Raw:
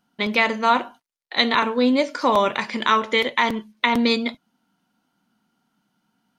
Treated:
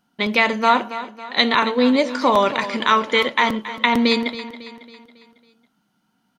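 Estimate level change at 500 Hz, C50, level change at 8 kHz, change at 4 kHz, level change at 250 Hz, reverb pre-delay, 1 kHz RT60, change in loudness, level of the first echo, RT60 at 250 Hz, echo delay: +2.5 dB, no reverb, +2.0 dB, +2.0 dB, +2.0 dB, no reverb, no reverb, +2.0 dB, -14.0 dB, no reverb, 275 ms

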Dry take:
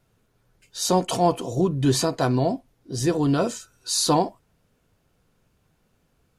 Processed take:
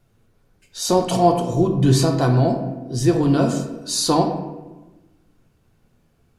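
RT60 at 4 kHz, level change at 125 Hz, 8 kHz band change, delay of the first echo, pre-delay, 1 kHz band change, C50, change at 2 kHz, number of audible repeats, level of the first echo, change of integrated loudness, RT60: 0.70 s, +7.0 dB, +1.0 dB, no echo, 3 ms, +3.5 dB, 6.5 dB, +2.0 dB, no echo, no echo, +4.0 dB, 1.1 s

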